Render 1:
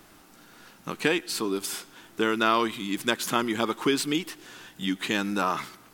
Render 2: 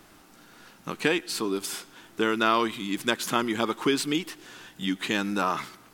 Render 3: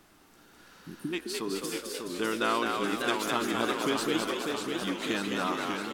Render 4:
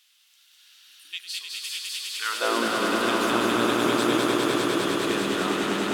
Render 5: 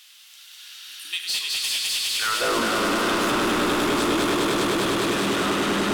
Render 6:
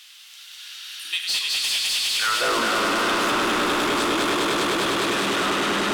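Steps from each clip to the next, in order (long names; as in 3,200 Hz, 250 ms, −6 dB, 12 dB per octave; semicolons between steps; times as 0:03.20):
high-shelf EQ 12,000 Hz −4 dB
healed spectral selection 0:00.71–0:01.11, 400–8,500 Hz before; echo with shifted repeats 210 ms, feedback 48%, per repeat +60 Hz, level −4 dB; feedback echo with a swinging delay time 596 ms, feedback 63%, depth 159 cents, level −5 dB; level −6 dB
high-pass filter sweep 3,200 Hz → 60 Hz, 0:02.12–0:02.85; echo that builds up and dies away 101 ms, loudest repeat 5, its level −5.5 dB
in parallel at +3 dB: downward compressor, threshold −34 dBFS, peak gain reduction 15 dB; on the sum: soft clipping −24 dBFS, distortion −8 dB; convolution reverb RT60 0.40 s, pre-delay 34 ms, DRR 10 dB; level +4.5 dB
mid-hump overdrive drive 8 dB, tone 6,900 Hz, clips at −14 dBFS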